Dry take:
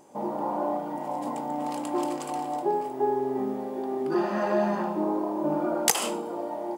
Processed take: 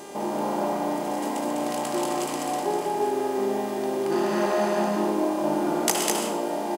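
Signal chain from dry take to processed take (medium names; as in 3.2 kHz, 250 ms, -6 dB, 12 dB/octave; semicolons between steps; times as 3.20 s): spectral levelling over time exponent 0.6; mains buzz 400 Hz, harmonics 28, -42 dBFS -6 dB/octave; loudspeakers at several distances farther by 43 m -10 dB, 69 m -3 dB; trim -3 dB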